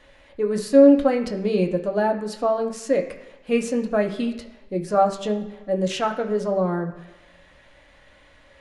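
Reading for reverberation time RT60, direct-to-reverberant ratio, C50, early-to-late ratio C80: 1.2 s, 2.0 dB, 10.5 dB, 13.0 dB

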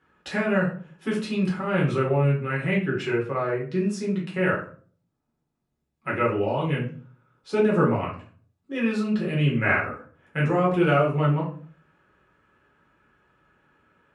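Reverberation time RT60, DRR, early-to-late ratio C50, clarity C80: 0.45 s, -5.0 dB, 6.0 dB, 12.0 dB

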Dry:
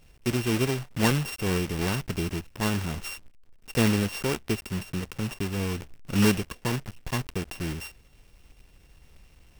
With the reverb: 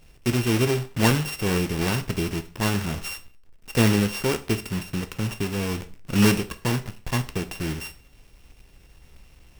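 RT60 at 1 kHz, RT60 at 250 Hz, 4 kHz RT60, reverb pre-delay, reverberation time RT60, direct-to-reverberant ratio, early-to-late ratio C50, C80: 0.40 s, 0.45 s, 0.40 s, 5 ms, 0.40 s, 9.0 dB, 16.0 dB, 20.5 dB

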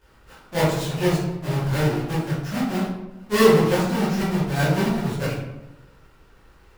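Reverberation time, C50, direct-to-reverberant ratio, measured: 1.0 s, 0.5 dB, -12.0 dB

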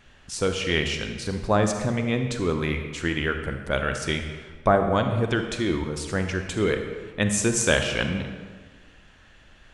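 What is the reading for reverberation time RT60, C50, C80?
1.5 s, 6.5 dB, 7.5 dB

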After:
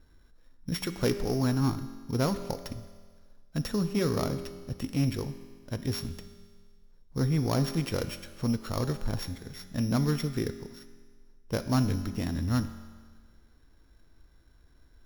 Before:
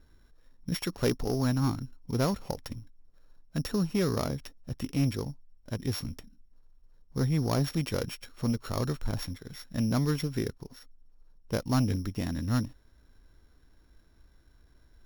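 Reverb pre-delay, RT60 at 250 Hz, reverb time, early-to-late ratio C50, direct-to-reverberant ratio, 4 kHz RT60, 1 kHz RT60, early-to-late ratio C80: 5 ms, 1.6 s, 1.6 s, 11.5 dB, 9.5 dB, 1.6 s, 1.6 s, 12.5 dB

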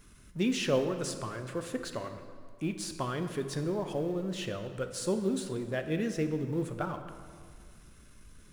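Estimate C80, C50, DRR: 10.0 dB, 9.0 dB, 7.5 dB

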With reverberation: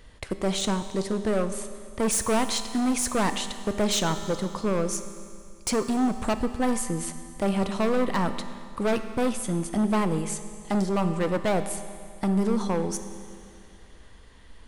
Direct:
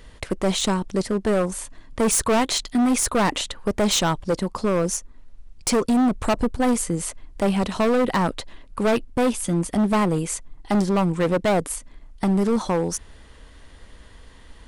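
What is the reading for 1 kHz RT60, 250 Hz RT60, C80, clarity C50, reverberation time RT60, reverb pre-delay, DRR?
2.3 s, 2.3 s, 11.0 dB, 10.0 dB, 2.3 s, 5 ms, 9.0 dB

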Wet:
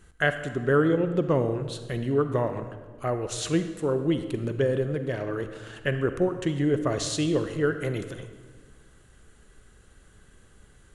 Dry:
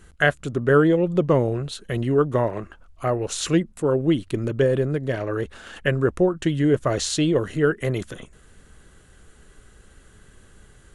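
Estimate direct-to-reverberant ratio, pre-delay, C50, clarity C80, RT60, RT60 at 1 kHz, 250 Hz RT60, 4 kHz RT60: 9.0 dB, 39 ms, 9.5 dB, 11.0 dB, 1.5 s, 1.4 s, 1.8 s, 1.1 s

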